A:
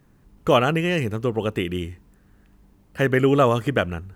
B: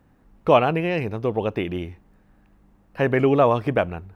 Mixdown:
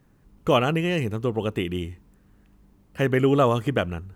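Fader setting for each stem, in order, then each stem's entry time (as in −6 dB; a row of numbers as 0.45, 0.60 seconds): −3.0, −12.5 decibels; 0.00, 0.00 seconds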